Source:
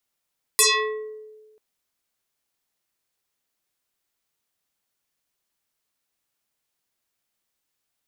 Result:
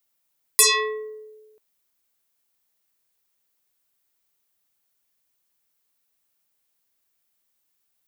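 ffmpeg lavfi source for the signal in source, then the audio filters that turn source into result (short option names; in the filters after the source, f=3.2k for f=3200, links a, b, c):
-f lavfi -i "aevalsrc='0.251*pow(10,-3*t/1.39)*sin(2*PI*431*t+8.5*pow(10,-3*t/0.76)*sin(2*PI*3.5*431*t))':d=0.99:s=44100"
-af "highshelf=f=12k:g=11"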